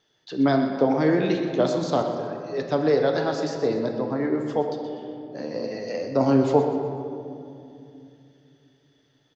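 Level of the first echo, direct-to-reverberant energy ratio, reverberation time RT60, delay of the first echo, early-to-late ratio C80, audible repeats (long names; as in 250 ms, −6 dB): −11.5 dB, 3.0 dB, 2.6 s, 124 ms, 5.0 dB, 3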